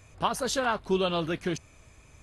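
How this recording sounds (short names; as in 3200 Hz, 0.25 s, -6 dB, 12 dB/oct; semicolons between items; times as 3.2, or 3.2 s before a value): noise floor -57 dBFS; spectral tilt -4.0 dB/oct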